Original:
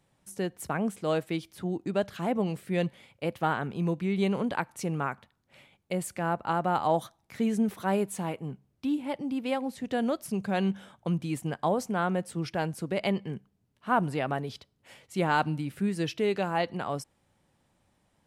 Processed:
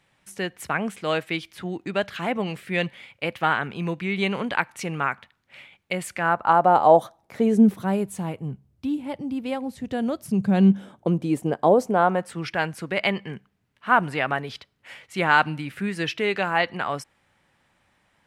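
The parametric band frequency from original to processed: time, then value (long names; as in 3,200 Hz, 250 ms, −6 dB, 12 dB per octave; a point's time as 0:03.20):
parametric band +12.5 dB 2.1 octaves
0:06.14 2,200 Hz
0:06.76 590 Hz
0:07.43 590 Hz
0:07.97 74 Hz
0:10.02 74 Hz
0:11.15 440 Hz
0:11.87 440 Hz
0:12.37 1,900 Hz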